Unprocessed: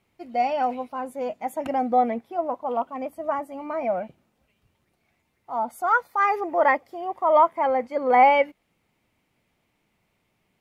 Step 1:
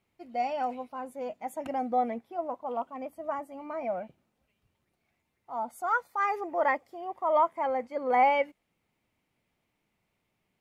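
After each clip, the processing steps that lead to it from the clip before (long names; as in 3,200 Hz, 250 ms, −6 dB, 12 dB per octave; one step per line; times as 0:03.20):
dynamic equaliser 7,800 Hz, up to +6 dB, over −52 dBFS, Q 1.5
level −7 dB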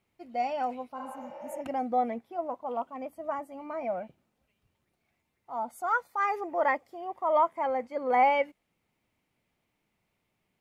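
healed spectral selection 0:01.00–0:01.57, 310–6,100 Hz both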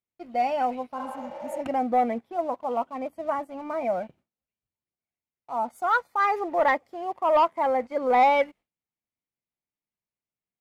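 high-shelf EQ 7,500 Hz −7.5 dB
leveller curve on the samples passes 1
noise gate with hold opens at −54 dBFS
level +2 dB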